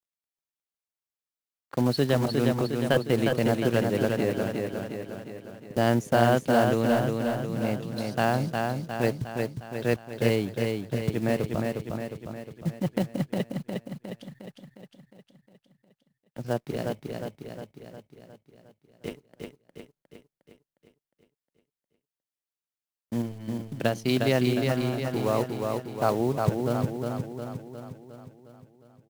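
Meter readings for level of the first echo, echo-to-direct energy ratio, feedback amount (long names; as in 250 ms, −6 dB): −4.0 dB, −2.5 dB, 56%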